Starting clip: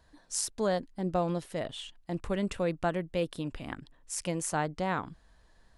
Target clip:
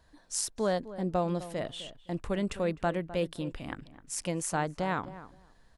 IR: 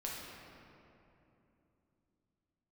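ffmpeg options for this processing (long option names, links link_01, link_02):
-filter_complex "[0:a]asplit=2[link_01][link_02];[link_02]adelay=257,lowpass=frequency=1400:poles=1,volume=-14dB,asplit=2[link_03][link_04];[link_04]adelay=257,lowpass=frequency=1400:poles=1,volume=0.17[link_05];[link_01][link_03][link_05]amix=inputs=3:normalize=0"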